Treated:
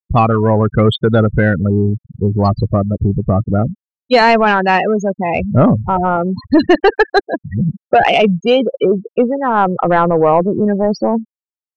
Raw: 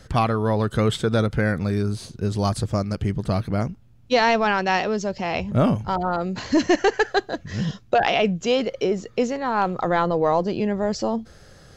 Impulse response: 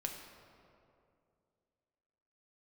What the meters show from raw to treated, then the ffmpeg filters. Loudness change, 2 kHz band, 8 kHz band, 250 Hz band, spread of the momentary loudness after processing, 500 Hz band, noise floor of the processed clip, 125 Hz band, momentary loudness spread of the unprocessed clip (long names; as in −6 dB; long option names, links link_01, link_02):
+8.5 dB, +7.5 dB, can't be measured, +9.0 dB, 7 LU, +9.0 dB, below −85 dBFS, +9.0 dB, 7 LU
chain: -af "afftfilt=real='re*gte(hypot(re,im),0.0891)':imag='im*gte(hypot(re,im),0.0891)':win_size=1024:overlap=0.75,acontrast=85,volume=2.5dB"